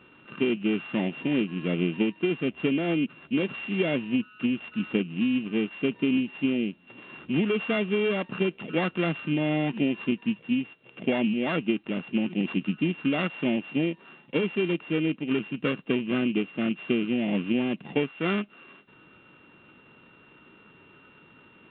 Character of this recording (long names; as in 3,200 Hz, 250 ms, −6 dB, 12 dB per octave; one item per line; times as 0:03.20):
a buzz of ramps at a fixed pitch in blocks of 16 samples
A-law companding